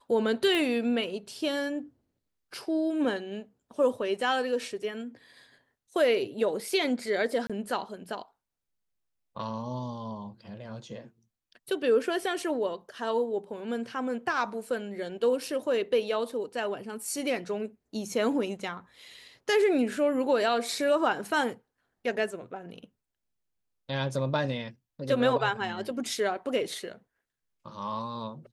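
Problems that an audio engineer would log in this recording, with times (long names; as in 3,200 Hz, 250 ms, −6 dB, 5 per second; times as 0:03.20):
0:00.55: click −17 dBFS
0:07.47–0:07.50: drop-out 26 ms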